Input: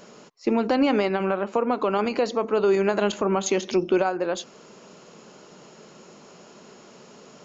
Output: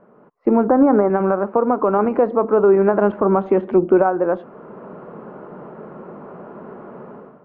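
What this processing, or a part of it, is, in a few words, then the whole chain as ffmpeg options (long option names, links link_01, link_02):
action camera in a waterproof case: -filter_complex "[0:a]asettb=1/sr,asplit=3[link_01][link_02][link_03];[link_01]atrim=end=0.674[link_04];[link_02]atrim=start=0.67:end=1.1,asetpts=PTS-STARTPTS,afade=type=in:duration=0.004:curve=qsin,afade=type=out:start_time=0.426:duration=0.004:curve=qsin,lowpass=frequency=1800:width=0.5412,lowpass=frequency=1800:width=1.3066[link_05];[link_03]atrim=start=1.096[link_06];[link_04][link_05]acrossfade=duration=0.004:curve1=hsin:curve2=qsin[link_07];[link_07][link_06]acrossfade=duration=0.004:curve1=qsin:curve2=hsin,lowpass=frequency=1400:width=0.5412,lowpass=frequency=1400:width=1.3066,dynaudnorm=framelen=100:gausssize=7:maxgain=15.5dB,volume=-3dB" -ar 22050 -c:a aac -b:a 96k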